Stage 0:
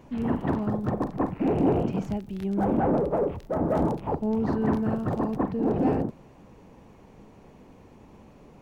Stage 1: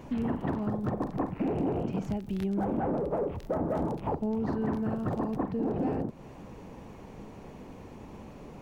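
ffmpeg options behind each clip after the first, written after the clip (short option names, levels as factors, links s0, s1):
-af "acompressor=threshold=0.02:ratio=4,volume=1.78"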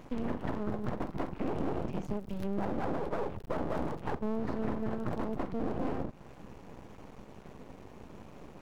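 -af "aeval=exprs='max(val(0),0)':c=same"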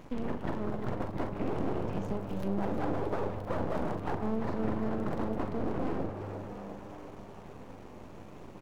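-filter_complex "[0:a]asplit=2[s0][s1];[s1]adelay=41,volume=0.266[s2];[s0][s2]amix=inputs=2:normalize=0,asplit=8[s3][s4][s5][s6][s7][s8][s9][s10];[s4]adelay=347,afreqshift=100,volume=0.355[s11];[s5]adelay=694,afreqshift=200,volume=0.207[s12];[s6]adelay=1041,afreqshift=300,volume=0.119[s13];[s7]adelay=1388,afreqshift=400,volume=0.0692[s14];[s8]adelay=1735,afreqshift=500,volume=0.0403[s15];[s9]adelay=2082,afreqshift=600,volume=0.0232[s16];[s10]adelay=2429,afreqshift=700,volume=0.0135[s17];[s3][s11][s12][s13][s14][s15][s16][s17]amix=inputs=8:normalize=0"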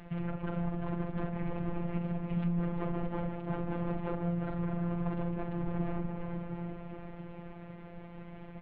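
-af "alimiter=level_in=1.06:limit=0.0631:level=0:latency=1:release=82,volume=0.944,highpass=f=160:t=q:w=0.5412,highpass=f=160:t=q:w=1.307,lowpass=f=3500:t=q:w=0.5176,lowpass=f=3500:t=q:w=0.7071,lowpass=f=3500:t=q:w=1.932,afreqshift=-360,afftfilt=real='hypot(re,im)*cos(PI*b)':imag='0':win_size=1024:overlap=0.75,volume=2.24"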